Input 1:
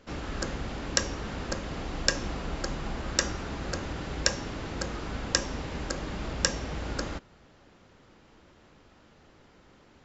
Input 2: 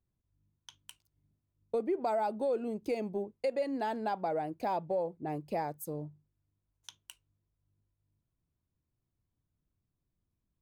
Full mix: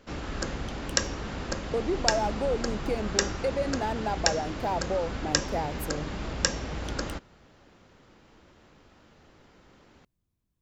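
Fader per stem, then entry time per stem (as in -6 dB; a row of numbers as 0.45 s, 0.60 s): +0.5 dB, +3.0 dB; 0.00 s, 0.00 s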